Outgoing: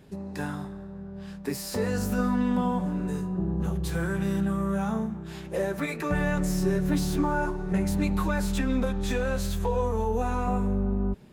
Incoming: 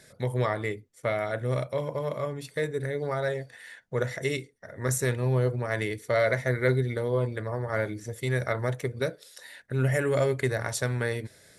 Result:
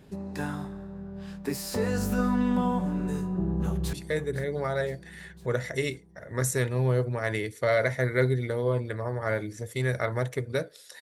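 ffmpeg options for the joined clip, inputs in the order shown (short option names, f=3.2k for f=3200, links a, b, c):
-filter_complex "[0:a]apad=whole_dur=11.01,atrim=end=11.01,atrim=end=3.932[a];[1:a]atrim=start=2.398:end=9.48[b];[a][b]acrossfade=d=0.004:c1=hsin:c2=hsin,asplit=2[c][d];[d]afade=t=in:st=3.32:d=0.01,afade=t=out:st=3.93:d=0.01,aecho=0:1:510|1020|1530|2040|2550|3060|3570:0.199526|0.129692|0.0842998|0.0547949|0.0356167|0.0231508|0.015048[e];[c][e]amix=inputs=2:normalize=0"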